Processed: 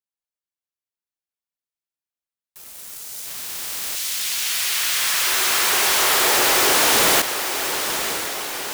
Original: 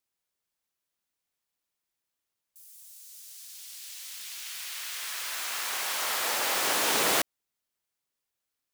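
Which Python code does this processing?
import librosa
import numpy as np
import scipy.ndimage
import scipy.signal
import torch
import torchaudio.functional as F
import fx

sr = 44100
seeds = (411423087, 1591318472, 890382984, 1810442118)

y = fx.spec_flatten(x, sr, power=0.2, at=(3.25, 3.95), fade=0.02)
y = fx.peak_eq(y, sr, hz=380.0, db=fx.line((5.26, 15.0), (6.75, 9.0)), octaves=0.35, at=(5.26, 6.75), fade=0.02)
y = fx.leveller(y, sr, passes=5)
y = fx.echo_diffused(y, sr, ms=986, feedback_pct=58, wet_db=-8.0)
y = fx.end_taper(y, sr, db_per_s=240.0)
y = y * librosa.db_to_amplitude(-1.5)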